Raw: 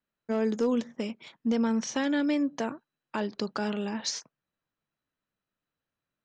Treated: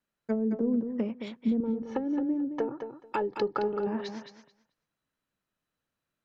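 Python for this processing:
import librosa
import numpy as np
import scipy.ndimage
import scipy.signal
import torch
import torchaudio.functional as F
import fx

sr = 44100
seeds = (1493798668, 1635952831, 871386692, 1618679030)

y = fx.env_lowpass_down(x, sr, base_hz=320.0, full_db=-24.5)
y = fx.comb(y, sr, ms=2.3, depth=0.71, at=(1.6, 3.87))
y = fx.echo_feedback(y, sr, ms=218, feedback_pct=16, wet_db=-8)
y = F.gain(torch.from_numpy(y), 1.5).numpy()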